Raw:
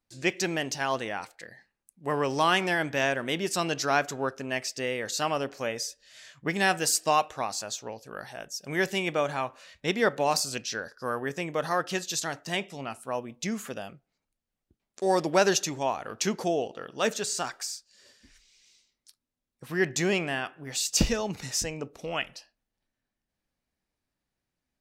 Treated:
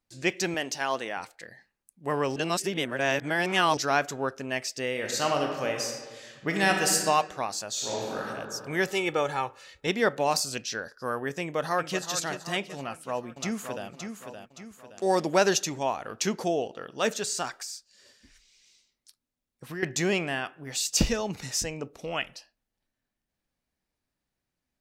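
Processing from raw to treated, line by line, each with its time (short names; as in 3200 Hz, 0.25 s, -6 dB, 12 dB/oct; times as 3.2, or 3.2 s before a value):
0.54–1.17 Bessel high-pass 250 Hz
2.36–3.77 reverse
4.9–6.96 reverb throw, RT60 1.5 s, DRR 2 dB
7.71–8.17 reverb throw, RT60 2.4 s, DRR -8 dB
8.92–9.87 comb 2.3 ms
11.4–12.07 echo throw 0.38 s, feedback 55%, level -9.5 dB
12.79–13.88 echo throw 0.57 s, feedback 45%, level -7 dB
17.59–19.83 compressor 3:1, threshold -34 dBFS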